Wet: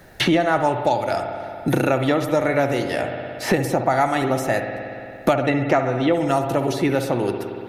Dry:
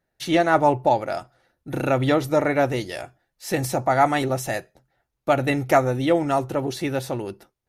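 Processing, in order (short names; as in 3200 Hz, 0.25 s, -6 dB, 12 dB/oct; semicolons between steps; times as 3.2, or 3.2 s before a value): 5.33–6.12 LPF 6100 Hz -> 3500 Hz 12 dB/oct; spring tank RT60 1.1 s, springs 57 ms, chirp 40 ms, DRR 7 dB; three-band squash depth 100%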